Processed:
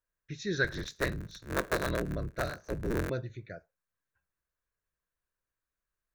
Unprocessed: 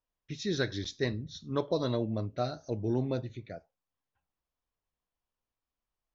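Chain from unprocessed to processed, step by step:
0:00.64–0:03.10: sub-harmonics by changed cycles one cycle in 3, inverted
thirty-one-band graphic EQ 250 Hz −9 dB, 800 Hz −11 dB, 1,600 Hz +10 dB, 3,150 Hz −8 dB, 5,000 Hz −6 dB

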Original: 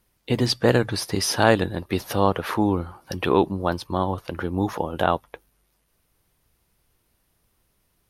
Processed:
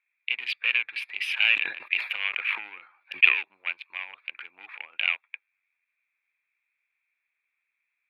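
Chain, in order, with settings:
adaptive Wiener filter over 15 samples
soft clipping −14.5 dBFS, distortion −10 dB
high-pass with resonance 2,400 Hz, resonance Q 10
high shelf with overshoot 4,100 Hz −13 dB, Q 3
0:01.29–0:03.39: level that may fall only so fast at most 120 dB per second
level −4.5 dB

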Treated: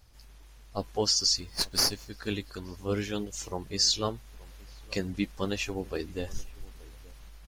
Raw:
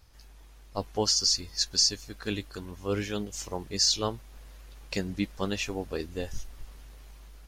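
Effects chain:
spectral magnitudes quantised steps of 15 dB
slap from a distant wall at 150 metres, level −23 dB
0:01.40–0:02.08: windowed peak hold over 3 samples

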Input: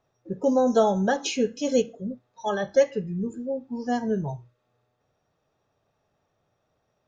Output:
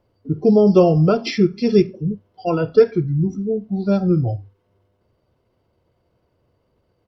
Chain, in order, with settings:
pitch shifter −3.5 semitones
low-shelf EQ 470 Hz +8 dB
level +3 dB

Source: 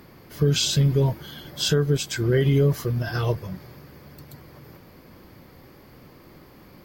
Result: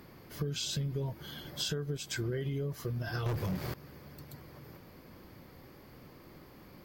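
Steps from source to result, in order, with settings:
0:03.26–0:03.74: leveller curve on the samples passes 5
downward compressor 8 to 1, threshold −27 dBFS, peak gain reduction 12.5 dB
level −5 dB

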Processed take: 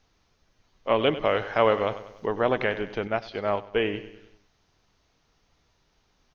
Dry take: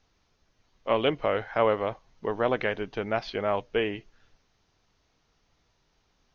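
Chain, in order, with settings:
0:01.25–0:02.26: high-shelf EQ 3,600 Hz +10 dB
on a send: repeating echo 97 ms, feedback 50%, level −14 dB
0:03.07–0:03.80: on the sum: expander for the loud parts 1.5 to 1, over −36 dBFS
level +2 dB

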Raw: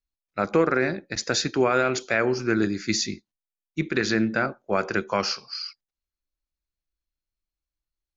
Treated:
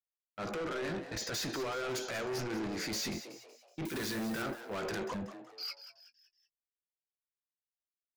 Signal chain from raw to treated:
0:03.85–0:04.42: spike at every zero crossing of −16.5 dBFS
0:05.14–0:05.58: inverse Chebyshev low-pass filter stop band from 1,200 Hz, stop band 70 dB
noise gate −40 dBFS, range −34 dB
transient designer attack −10 dB, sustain +7 dB
downward compressor, threshold −23 dBFS, peak gain reduction 7.5 dB
soft clipping −35 dBFS, distortion −5 dB
double-tracking delay 18 ms −14 dB
echo with shifted repeats 187 ms, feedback 42%, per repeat +120 Hz, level −12 dB

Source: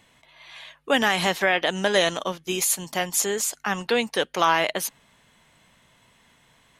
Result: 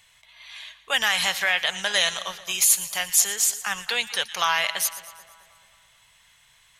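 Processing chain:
guitar amp tone stack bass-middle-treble 10-0-10
echo with a time of its own for lows and highs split 1,600 Hz, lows 217 ms, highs 117 ms, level −15 dB
level +5.5 dB

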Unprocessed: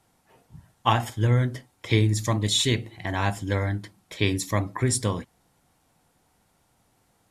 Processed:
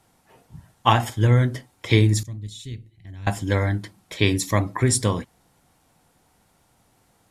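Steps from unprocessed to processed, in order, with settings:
0:02.23–0:03.27: guitar amp tone stack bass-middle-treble 10-0-1
level +4 dB

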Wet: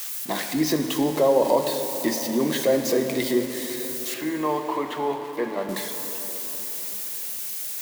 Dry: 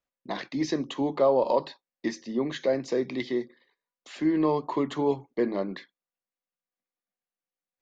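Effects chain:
spike at every zero crossing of −28.5 dBFS
0:00.99–0:01.45: notch filter 1,200 Hz, Q 7.5
0:04.14–0:05.69: three-way crossover with the lows and the highs turned down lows −12 dB, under 580 Hz, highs −16 dB, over 3,400 Hz
in parallel at −1.5 dB: brickwall limiter −21 dBFS, peak gain reduction 9 dB
on the sum: dense smooth reverb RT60 4.6 s, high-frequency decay 0.55×, DRR 5.5 dB

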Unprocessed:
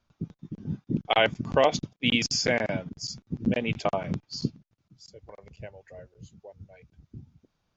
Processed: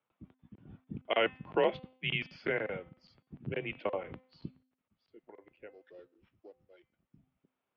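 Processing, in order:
0:05.71–0:07.17: samples sorted by size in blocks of 8 samples
single-sideband voice off tune −100 Hz 290–3,200 Hz
hum removal 257.5 Hz, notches 18
level −6.5 dB

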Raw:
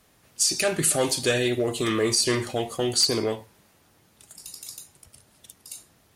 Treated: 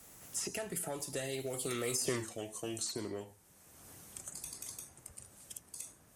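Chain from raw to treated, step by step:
source passing by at 0:02.15, 29 m/s, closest 2 metres
high shelf with overshoot 5,500 Hz +7.5 dB, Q 1.5
multiband upward and downward compressor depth 100%
level +1 dB

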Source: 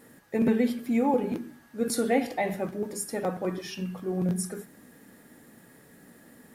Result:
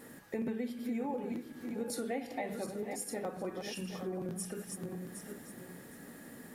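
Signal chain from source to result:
feedback delay that plays each chunk backwards 381 ms, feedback 43%, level −9 dB
mains-hum notches 60/120/180 Hz
downward compressor 3 to 1, threshold −41 dBFS, peak gain reduction 16 dB
level +2 dB

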